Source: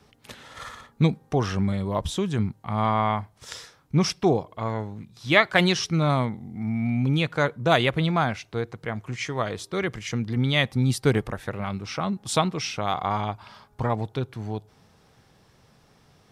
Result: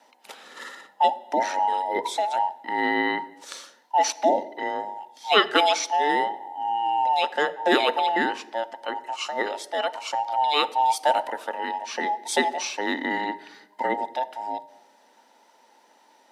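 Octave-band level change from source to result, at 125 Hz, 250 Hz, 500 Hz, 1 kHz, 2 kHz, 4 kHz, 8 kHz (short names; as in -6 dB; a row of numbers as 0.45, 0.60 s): under -30 dB, -7.0 dB, +0.5 dB, +7.0 dB, +0.5 dB, +2.5 dB, +2.5 dB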